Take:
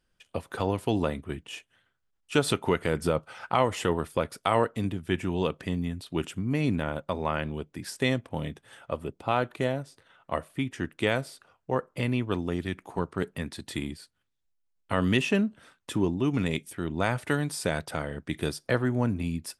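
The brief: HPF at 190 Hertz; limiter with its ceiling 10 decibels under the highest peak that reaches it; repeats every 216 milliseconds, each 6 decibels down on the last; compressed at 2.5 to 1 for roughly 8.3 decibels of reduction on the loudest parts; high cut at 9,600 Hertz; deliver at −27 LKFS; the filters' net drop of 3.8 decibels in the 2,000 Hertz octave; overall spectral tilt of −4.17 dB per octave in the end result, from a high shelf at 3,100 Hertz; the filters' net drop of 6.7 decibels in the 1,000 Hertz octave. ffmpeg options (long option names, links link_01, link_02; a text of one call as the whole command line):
ffmpeg -i in.wav -af "highpass=190,lowpass=9600,equalizer=frequency=1000:width_type=o:gain=-8.5,equalizer=frequency=2000:width_type=o:gain=-5.5,highshelf=frequency=3100:gain=8,acompressor=threshold=-34dB:ratio=2.5,alimiter=level_in=1.5dB:limit=-24dB:level=0:latency=1,volume=-1.5dB,aecho=1:1:216|432|648|864|1080|1296:0.501|0.251|0.125|0.0626|0.0313|0.0157,volume=11dB" out.wav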